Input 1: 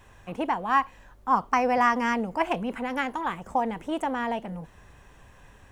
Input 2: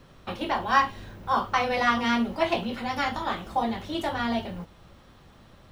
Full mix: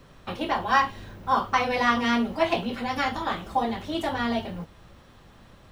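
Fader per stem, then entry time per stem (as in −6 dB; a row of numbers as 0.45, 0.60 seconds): −8.0, +0.5 decibels; 0.00, 0.00 seconds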